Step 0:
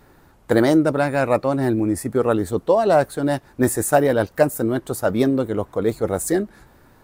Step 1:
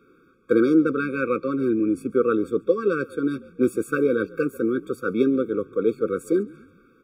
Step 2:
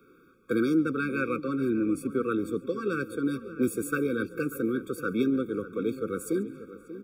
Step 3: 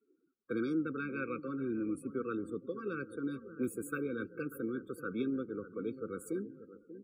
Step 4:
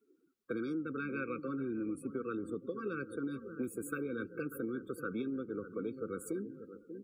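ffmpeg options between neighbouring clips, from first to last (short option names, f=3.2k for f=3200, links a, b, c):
-filter_complex "[0:a]acrossover=split=190 3200:gain=0.0891 1 0.158[a][b][c];[a][b][c]amix=inputs=3:normalize=0,asplit=4[d][e][f][g];[e]adelay=139,afreqshift=-55,volume=-23dB[h];[f]adelay=278,afreqshift=-110,volume=-31dB[i];[g]adelay=417,afreqshift=-165,volume=-38.9dB[j];[d][h][i][j]amix=inputs=4:normalize=0,afftfilt=real='re*eq(mod(floor(b*sr/1024/540),2),0)':imag='im*eq(mod(floor(b*sr/1024/540),2),0)':win_size=1024:overlap=0.75"
-filter_complex "[0:a]highshelf=f=9.2k:g=10.5,acrossover=split=290|1300[a][b][c];[b]acompressor=threshold=-32dB:ratio=6[d];[a][d][c]amix=inputs=3:normalize=0,asplit=2[e][f];[f]adelay=589,lowpass=f=1.9k:p=1,volume=-13.5dB,asplit=2[g][h];[h]adelay=589,lowpass=f=1.9k:p=1,volume=0.47,asplit=2[i][j];[j]adelay=589,lowpass=f=1.9k:p=1,volume=0.47,asplit=2[k][l];[l]adelay=589,lowpass=f=1.9k:p=1,volume=0.47,asplit=2[m][n];[n]adelay=589,lowpass=f=1.9k:p=1,volume=0.47[o];[e][g][i][k][m][o]amix=inputs=6:normalize=0,volume=-1.5dB"
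-af "afftdn=nr=27:nf=-46,volume=-9dB"
-af "acompressor=threshold=-37dB:ratio=6,volume=3dB"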